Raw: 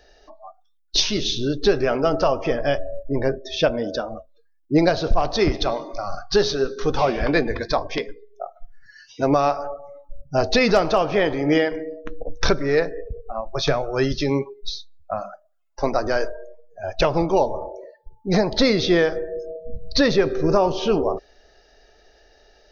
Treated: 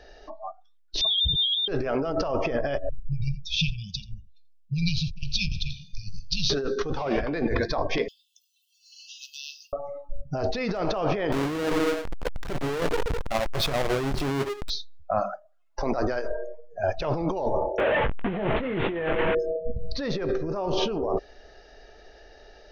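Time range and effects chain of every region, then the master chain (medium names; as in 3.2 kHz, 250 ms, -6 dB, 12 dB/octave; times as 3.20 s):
1.01–1.68 s: spectral contrast enhancement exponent 3.3 + peaking EQ 1.4 kHz +8 dB 1.7 oct + frequency inversion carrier 3.6 kHz
2.89–6.50 s: brick-wall FIR band-stop 190–2300 Hz + delay 85 ms -18.5 dB
8.08–9.73 s: brick-wall FIR high-pass 2.6 kHz + comb 1.2 ms, depth 47% + spectrum-flattening compressor 2:1
11.32–14.70 s: square wave that keeps the level + compression 2:1, threshold -25 dBFS
17.78–19.35 s: one-bit delta coder 16 kbps, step -21 dBFS + doubling 20 ms -9 dB
whole clip: low-pass 3.3 kHz 6 dB/octave; peak limiter -13 dBFS; compressor with a negative ratio -27 dBFS, ratio -1; trim +1.5 dB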